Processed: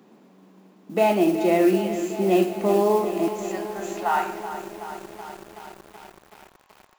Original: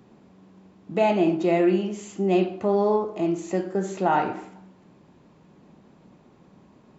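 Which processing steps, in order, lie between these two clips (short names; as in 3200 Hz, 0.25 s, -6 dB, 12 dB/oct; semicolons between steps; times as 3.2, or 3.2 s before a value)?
HPF 190 Hz 24 dB/oct, from 3.28 s 780 Hz; modulation noise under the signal 24 dB; lo-fi delay 0.376 s, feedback 80%, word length 7-bit, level -11 dB; gain +1.5 dB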